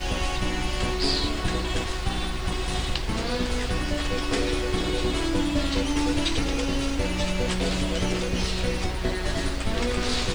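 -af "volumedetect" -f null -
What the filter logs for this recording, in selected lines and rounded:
mean_volume: -25.2 dB
max_volume: -11.0 dB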